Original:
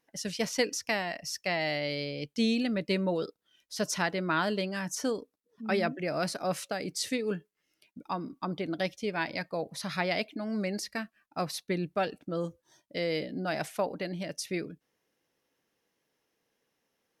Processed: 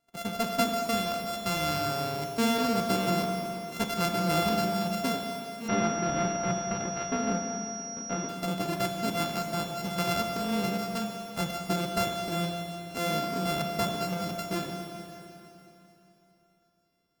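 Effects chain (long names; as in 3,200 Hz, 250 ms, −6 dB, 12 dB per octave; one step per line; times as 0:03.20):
samples sorted by size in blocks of 64 samples
low-shelf EQ 150 Hz +6.5 dB
notch filter 1,900 Hz, Q 10
four-comb reverb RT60 3.2 s, combs from 29 ms, DRR 3 dB
0:05.68–0:08.29: switching amplifier with a slow clock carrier 5,700 Hz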